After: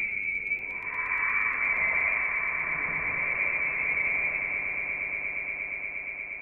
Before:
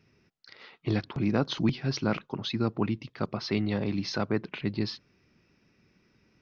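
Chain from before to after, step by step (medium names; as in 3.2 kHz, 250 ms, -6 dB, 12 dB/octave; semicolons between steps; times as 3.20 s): frequency inversion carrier 2.5 kHz; Paulstretch 4.6×, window 0.25 s, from 3.92 s; echo with a slow build-up 118 ms, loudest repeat 8, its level -11.5 dB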